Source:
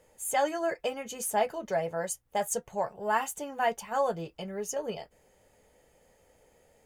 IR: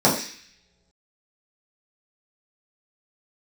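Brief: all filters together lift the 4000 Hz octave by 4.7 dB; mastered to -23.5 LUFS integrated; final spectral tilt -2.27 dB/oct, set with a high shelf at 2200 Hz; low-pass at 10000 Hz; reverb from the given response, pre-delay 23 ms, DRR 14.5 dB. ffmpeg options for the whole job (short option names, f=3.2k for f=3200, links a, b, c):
-filter_complex "[0:a]lowpass=10k,highshelf=f=2.2k:g=3.5,equalizer=f=4k:t=o:g=3.5,asplit=2[a][b];[1:a]atrim=start_sample=2205,adelay=23[c];[b][c]afir=irnorm=-1:irlink=0,volume=-35dB[d];[a][d]amix=inputs=2:normalize=0,volume=7dB"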